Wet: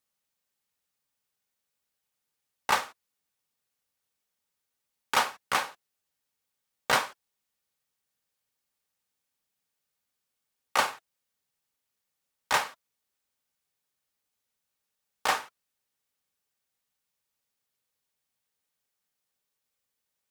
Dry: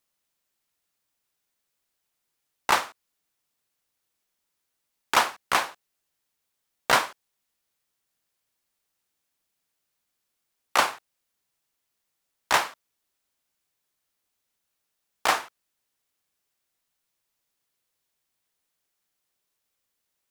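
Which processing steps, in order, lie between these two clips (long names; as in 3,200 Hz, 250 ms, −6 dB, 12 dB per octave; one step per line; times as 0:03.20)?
notch comb filter 340 Hz
level −2.5 dB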